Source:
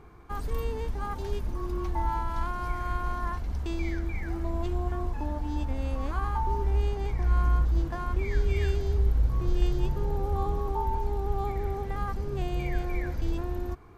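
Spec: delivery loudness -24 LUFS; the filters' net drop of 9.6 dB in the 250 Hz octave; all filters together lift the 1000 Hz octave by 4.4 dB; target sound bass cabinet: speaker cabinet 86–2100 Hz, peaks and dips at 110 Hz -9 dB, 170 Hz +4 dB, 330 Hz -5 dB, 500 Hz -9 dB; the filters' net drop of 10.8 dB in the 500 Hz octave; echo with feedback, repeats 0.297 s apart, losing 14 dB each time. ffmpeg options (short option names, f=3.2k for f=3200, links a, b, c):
-af "highpass=f=86:w=0.5412,highpass=f=86:w=1.3066,equalizer=f=110:t=q:w=4:g=-9,equalizer=f=170:t=q:w=4:g=4,equalizer=f=330:t=q:w=4:g=-5,equalizer=f=500:t=q:w=4:g=-9,lowpass=f=2.1k:w=0.5412,lowpass=f=2.1k:w=1.3066,equalizer=f=250:t=o:g=-8.5,equalizer=f=500:t=o:g=-8.5,equalizer=f=1k:t=o:g=8.5,aecho=1:1:297|594:0.2|0.0399,volume=10.5dB"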